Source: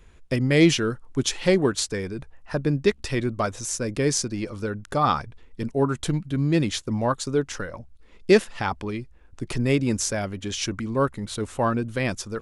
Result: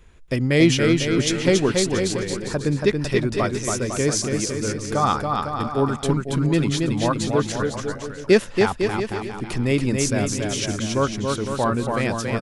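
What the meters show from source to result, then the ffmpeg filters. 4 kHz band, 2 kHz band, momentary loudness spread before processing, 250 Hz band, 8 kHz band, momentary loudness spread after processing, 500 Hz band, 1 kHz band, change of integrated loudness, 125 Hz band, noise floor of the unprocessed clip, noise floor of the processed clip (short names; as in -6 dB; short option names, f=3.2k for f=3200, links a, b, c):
+3.0 dB, +3.0 dB, 12 LU, +3.0 dB, +3.0 dB, 7 LU, +3.0 dB, +3.0 dB, +3.0 dB, +3.0 dB, -51 dBFS, -36 dBFS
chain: -af "aecho=1:1:280|504|683.2|826.6|941.2:0.631|0.398|0.251|0.158|0.1,volume=1dB"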